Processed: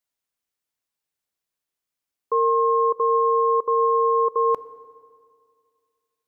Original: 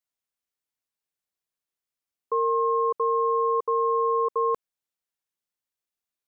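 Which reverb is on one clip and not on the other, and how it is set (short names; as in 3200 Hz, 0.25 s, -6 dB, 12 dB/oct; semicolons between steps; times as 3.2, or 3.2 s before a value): FDN reverb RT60 2.1 s, low-frequency decay 1.2×, high-frequency decay 0.75×, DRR 16 dB; gain +3.5 dB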